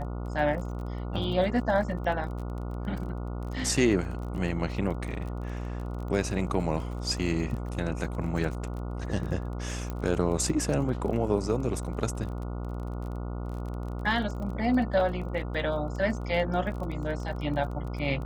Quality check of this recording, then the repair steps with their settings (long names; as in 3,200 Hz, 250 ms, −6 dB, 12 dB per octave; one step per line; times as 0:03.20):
mains buzz 60 Hz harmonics 24 −34 dBFS
surface crackle 26 per second −36 dBFS
0:09.90: click −21 dBFS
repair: click removal
hum removal 60 Hz, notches 24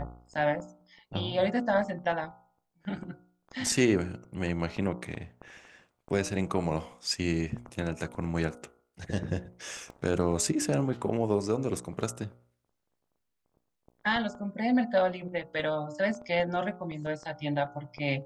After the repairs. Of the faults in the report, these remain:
0:09.90: click